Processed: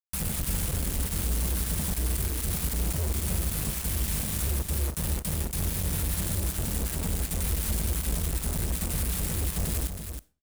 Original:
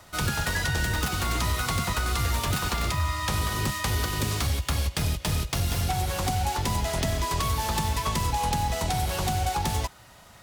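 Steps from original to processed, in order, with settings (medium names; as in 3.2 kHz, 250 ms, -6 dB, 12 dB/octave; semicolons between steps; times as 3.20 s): inverse Chebyshev band-stop 370–4800 Hz, stop band 40 dB; peaking EQ 730 Hz -3 dB 2.4 oct; comb 4.3 ms, depth 76%; compression 3:1, threshold -33 dBFS, peak gain reduction 8 dB; peak limiter -30.5 dBFS, peak gain reduction 7.5 dB; companded quantiser 2-bit; delay 320 ms -8 dB; on a send at -19 dB: reverberation RT60 0.35 s, pre-delay 10 ms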